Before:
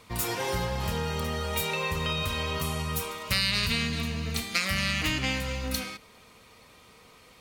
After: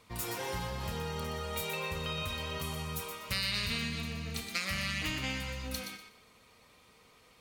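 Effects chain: thinning echo 0.122 s, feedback 24%, level -7 dB; gain -7.5 dB

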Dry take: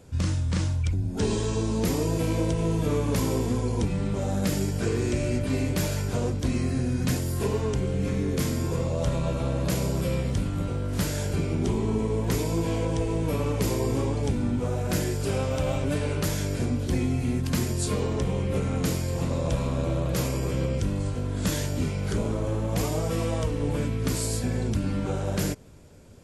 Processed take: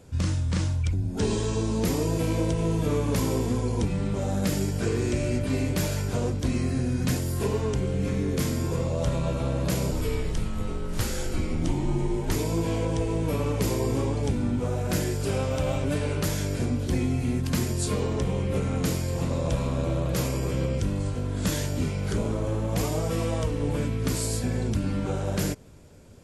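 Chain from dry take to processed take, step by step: 9.91–12.36 frequency shift -80 Hz

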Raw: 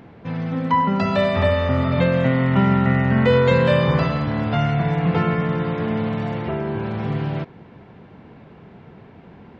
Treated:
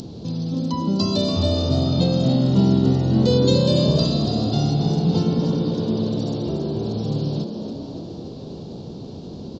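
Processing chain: EQ curve 360 Hz 0 dB, 1200 Hz -16 dB, 2000 Hz -27 dB, 4300 Hz +15 dB; upward compressor, threshold -25 dBFS; frequency-shifting echo 0.285 s, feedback 59%, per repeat +64 Hz, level -7.5 dB; downsampling 16000 Hz

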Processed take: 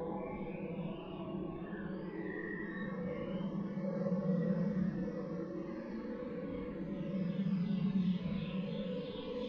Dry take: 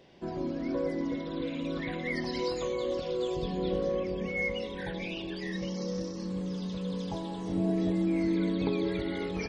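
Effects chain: chorus voices 6, 0.35 Hz, delay 14 ms, depth 4.1 ms; low-pass sweep 1000 Hz -> 4700 Hz, 4.88–8.09; Paulstretch 4.6×, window 0.05 s, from 4.95; gain -2.5 dB

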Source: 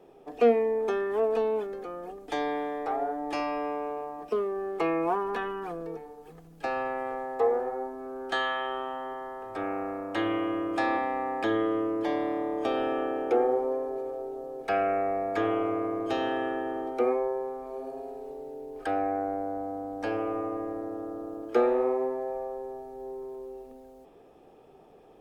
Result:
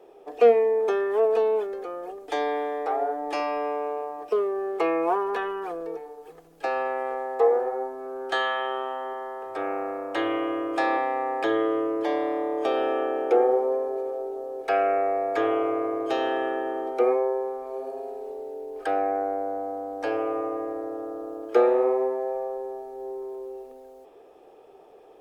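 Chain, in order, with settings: resonant low shelf 290 Hz -10 dB, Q 1.5; gain +2.5 dB

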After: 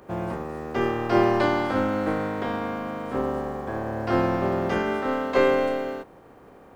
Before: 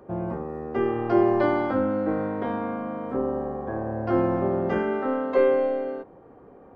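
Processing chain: spectral contrast lowered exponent 0.65

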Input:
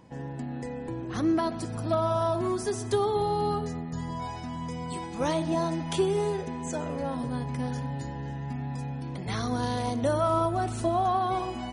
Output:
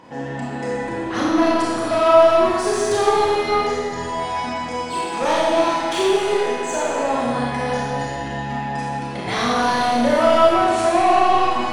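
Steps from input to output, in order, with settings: 5.06–7.27 low shelf 150 Hz -11 dB; overdrive pedal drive 19 dB, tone 3100 Hz, clips at -14.5 dBFS; Schroeder reverb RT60 1.6 s, combs from 26 ms, DRR -5.5 dB

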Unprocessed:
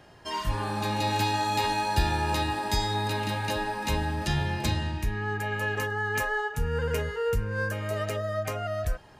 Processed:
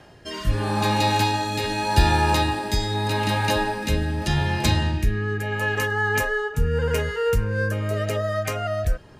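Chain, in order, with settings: rotary speaker horn 0.8 Hz; gain +8 dB

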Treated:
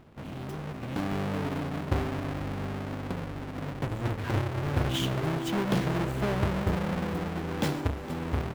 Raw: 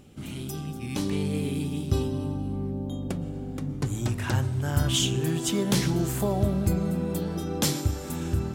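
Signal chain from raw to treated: half-waves squared off; tone controls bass -3 dB, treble -12 dB; echo 0.462 s -17.5 dB; gain -5.5 dB

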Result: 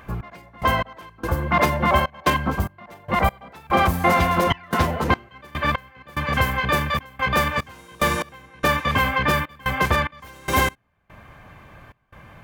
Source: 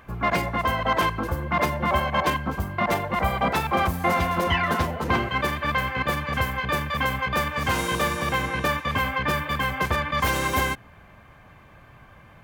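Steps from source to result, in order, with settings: step gate "x..x..xxxx.x" 73 bpm -24 dB; gain +4.5 dB

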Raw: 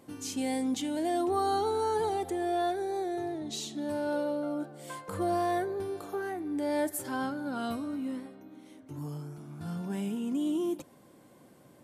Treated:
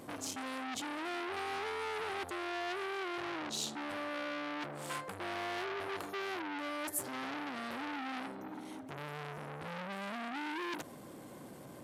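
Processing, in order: reverse; compressor 10:1, threshold -39 dBFS, peak gain reduction 14.5 dB; reverse; core saturation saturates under 3500 Hz; gain +8.5 dB

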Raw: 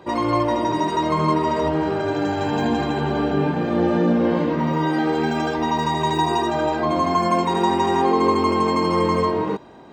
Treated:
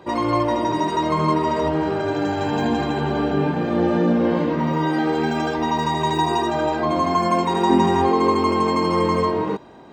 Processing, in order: 7.69–8.11 bell 320 Hz -> 64 Hz +12 dB 0.9 oct

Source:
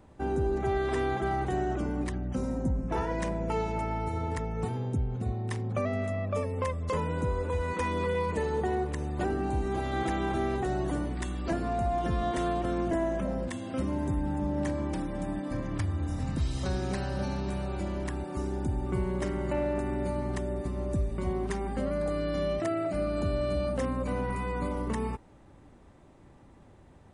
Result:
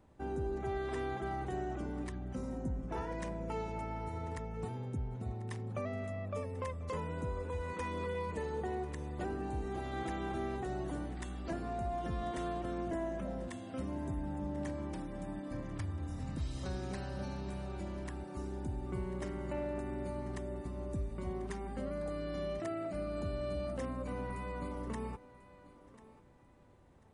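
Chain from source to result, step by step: thinning echo 1.042 s, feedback 28%, high-pass 190 Hz, level -17 dB; gain -8.5 dB

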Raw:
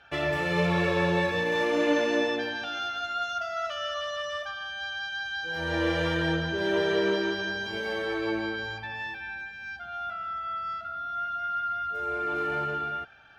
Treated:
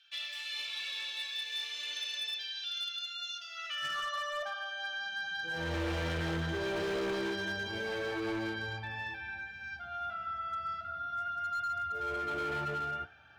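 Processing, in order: high-pass sweep 3600 Hz -> 82 Hz, 3.41–5.77; flange 0.35 Hz, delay 7.8 ms, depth 8.2 ms, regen -64%; overloaded stage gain 31.5 dB

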